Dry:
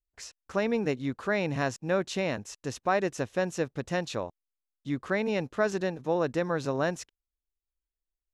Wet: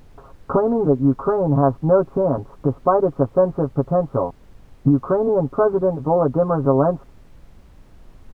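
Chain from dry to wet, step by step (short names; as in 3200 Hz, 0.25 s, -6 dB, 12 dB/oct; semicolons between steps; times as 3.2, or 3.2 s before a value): recorder AGC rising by 25 dB/s; steep low-pass 1300 Hz 72 dB/oct; comb 7.3 ms, depth 82%; added noise brown -53 dBFS; gain +9 dB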